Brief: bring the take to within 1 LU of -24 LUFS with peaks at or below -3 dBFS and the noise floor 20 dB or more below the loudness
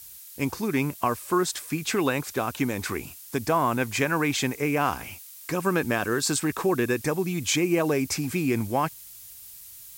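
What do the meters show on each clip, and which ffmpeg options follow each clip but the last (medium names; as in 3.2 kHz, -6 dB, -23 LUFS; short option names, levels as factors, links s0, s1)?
noise floor -45 dBFS; noise floor target -46 dBFS; loudness -26.0 LUFS; peak level -10.5 dBFS; loudness target -24.0 LUFS
-> -af "afftdn=nr=6:nf=-45"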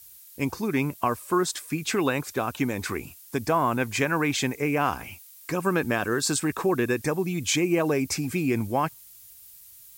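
noise floor -49 dBFS; loudness -26.5 LUFS; peak level -10.5 dBFS; loudness target -24.0 LUFS
-> -af "volume=1.33"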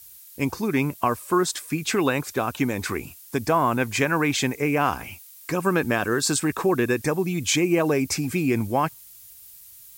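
loudness -24.0 LUFS; peak level -8.0 dBFS; noise floor -47 dBFS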